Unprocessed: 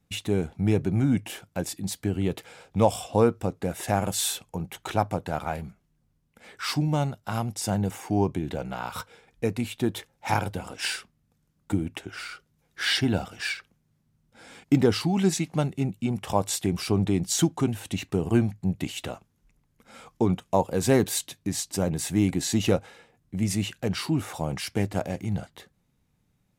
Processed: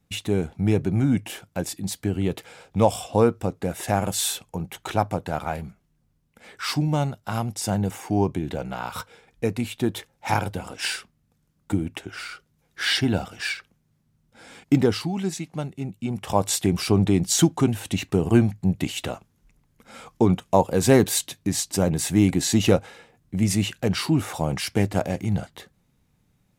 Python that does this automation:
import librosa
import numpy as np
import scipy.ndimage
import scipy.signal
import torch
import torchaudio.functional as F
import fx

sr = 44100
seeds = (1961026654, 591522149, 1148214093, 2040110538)

y = fx.gain(x, sr, db=fx.line((14.78, 2.0), (15.24, -4.5), (15.8, -4.5), (16.49, 4.5)))